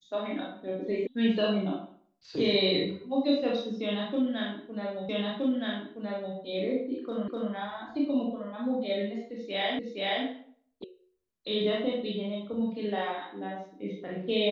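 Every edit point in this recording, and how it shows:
1.07 s: sound stops dead
5.09 s: repeat of the last 1.27 s
7.28 s: repeat of the last 0.25 s
9.79 s: repeat of the last 0.47 s
10.84 s: sound stops dead

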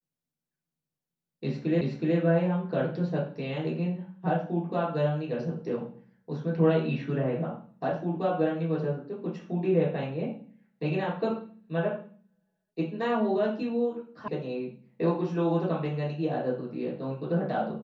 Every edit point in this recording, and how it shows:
1.81 s: repeat of the last 0.37 s
14.28 s: sound stops dead

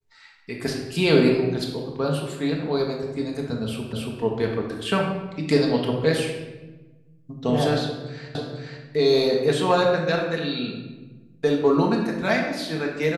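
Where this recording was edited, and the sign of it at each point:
3.93 s: repeat of the last 0.28 s
8.35 s: repeat of the last 0.49 s

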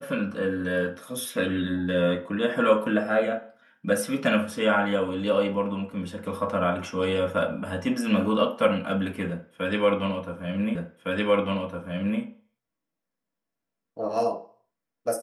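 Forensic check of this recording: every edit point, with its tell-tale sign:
10.75 s: repeat of the last 1.46 s

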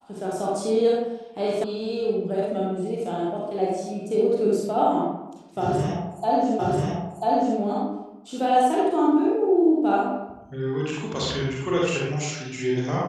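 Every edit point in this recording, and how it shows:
1.64 s: sound stops dead
6.59 s: repeat of the last 0.99 s

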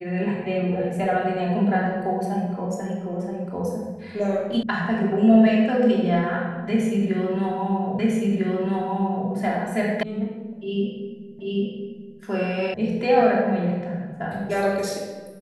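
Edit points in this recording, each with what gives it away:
4.63 s: sound stops dead
7.99 s: repeat of the last 1.3 s
10.03 s: sound stops dead
11.39 s: repeat of the last 0.79 s
12.74 s: sound stops dead

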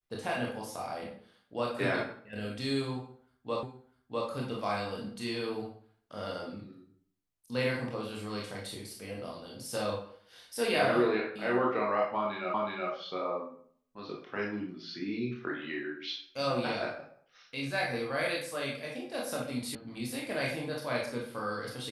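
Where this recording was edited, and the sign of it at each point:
3.63 s: repeat of the last 0.65 s
12.54 s: repeat of the last 0.37 s
19.75 s: sound stops dead

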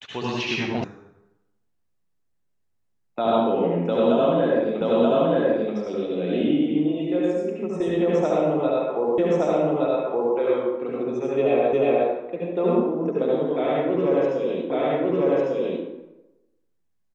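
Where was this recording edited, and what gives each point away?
0.84 s: sound stops dead
4.81 s: repeat of the last 0.93 s
9.18 s: repeat of the last 1.17 s
11.73 s: repeat of the last 0.36 s
14.70 s: repeat of the last 1.15 s

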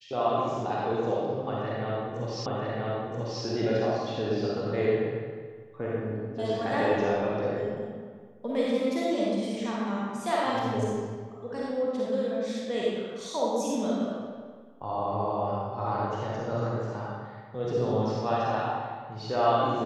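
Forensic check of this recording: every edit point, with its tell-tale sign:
2.46 s: repeat of the last 0.98 s

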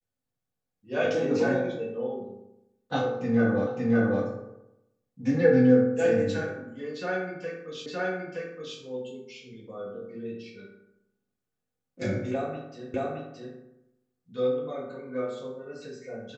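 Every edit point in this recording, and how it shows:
3.67 s: repeat of the last 0.56 s
7.86 s: repeat of the last 0.92 s
12.94 s: repeat of the last 0.62 s

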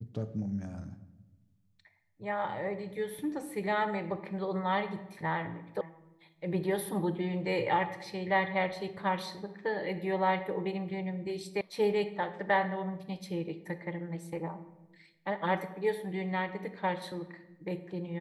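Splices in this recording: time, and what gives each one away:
5.81 s: sound stops dead
11.61 s: sound stops dead

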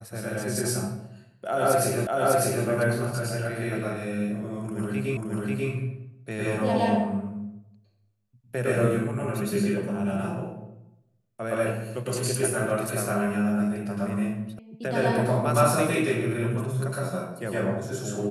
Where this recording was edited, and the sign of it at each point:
2.07 s: repeat of the last 0.6 s
5.17 s: repeat of the last 0.54 s
14.59 s: sound stops dead

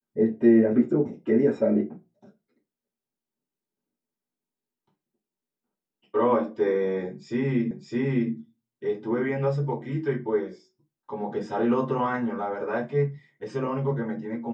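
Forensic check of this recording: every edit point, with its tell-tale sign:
7.71 s: repeat of the last 0.61 s

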